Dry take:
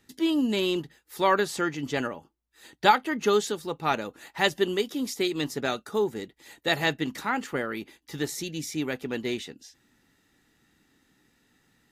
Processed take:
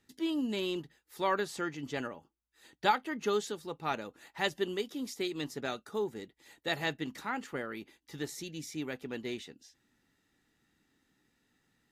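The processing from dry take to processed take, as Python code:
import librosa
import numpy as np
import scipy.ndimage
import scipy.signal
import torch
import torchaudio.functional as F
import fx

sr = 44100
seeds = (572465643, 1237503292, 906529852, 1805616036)

y = fx.high_shelf(x, sr, hz=11000.0, db=-3.5)
y = y * librosa.db_to_amplitude(-8.0)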